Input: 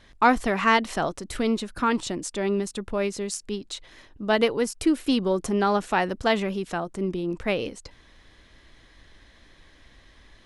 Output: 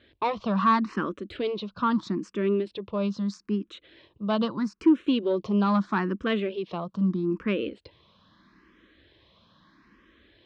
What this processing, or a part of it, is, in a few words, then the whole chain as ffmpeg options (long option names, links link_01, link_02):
barber-pole phaser into a guitar amplifier: -filter_complex "[0:a]asplit=2[link_01][link_02];[link_02]afreqshift=0.78[link_03];[link_01][link_03]amix=inputs=2:normalize=1,asoftclip=type=tanh:threshold=-16dB,highpass=98,equalizer=frequency=200:width_type=q:width=4:gain=8,equalizer=frequency=330:width_type=q:width=4:gain=5,equalizer=frequency=770:width_type=q:width=4:gain=-9,equalizer=frequency=1100:width_type=q:width=4:gain=6,equalizer=frequency=2000:width_type=q:width=4:gain=-6,lowpass=frequency=4200:width=0.5412,lowpass=frequency=4200:width=1.3066"